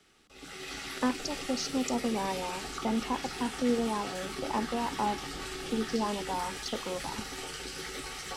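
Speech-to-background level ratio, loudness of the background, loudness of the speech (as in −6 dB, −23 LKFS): 4.0 dB, −38.0 LKFS, −34.0 LKFS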